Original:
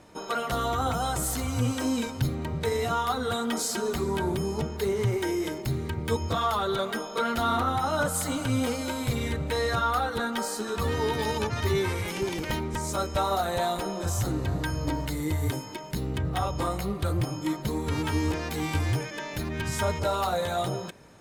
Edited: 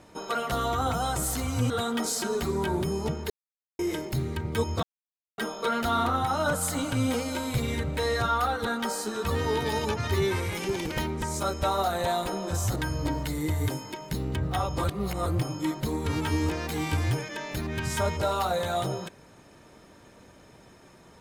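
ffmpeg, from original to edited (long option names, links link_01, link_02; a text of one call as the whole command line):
ffmpeg -i in.wav -filter_complex "[0:a]asplit=9[link_01][link_02][link_03][link_04][link_05][link_06][link_07][link_08][link_09];[link_01]atrim=end=1.702[link_10];[link_02]atrim=start=3.228:end=4.83,asetpts=PTS-STARTPTS,afade=type=out:start_time=1.598:duration=0.004:curve=hsin[link_11];[link_03]atrim=start=4.83:end=5.32,asetpts=PTS-STARTPTS,volume=0[link_12];[link_04]atrim=start=5.32:end=6.36,asetpts=PTS-STARTPTS,afade=type=in:duration=0.004:curve=hsin,afade=type=out:start_time=1.036:duration=0.004:curve=hsin[link_13];[link_05]atrim=start=6.36:end=6.91,asetpts=PTS-STARTPTS,volume=0[link_14];[link_06]atrim=start=6.91:end=14.292,asetpts=PTS-STARTPTS,afade=type=in:duration=0.004:curve=hsin[link_15];[link_07]atrim=start=14.578:end=16.662[link_16];[link_08]atrim=start=16.658:end=17.082,asetpts=PTS-STARTPTS,areverse[link_17];[link_09]atrim=start=17.078[link_18];[link_11][link_12][link_13][link_14][link_15]concat=n=5:v=0:a=1[link_19];[link_10][link_19]acrossfade=duration=0.004:curve1=hsin:curve2=hsin[link_20];[link_20][link_16]acrossfade=duration=0.004:curve1=hsin:curve2=hsin[link_21];[link_21][link_17]acrossfade=duration=0.004:curve1=hsin:curve2=hsin[link_22];[link_22][link_18]acrossfade=duration=0.004:curve1=hsin:curve2=hsin" out.wav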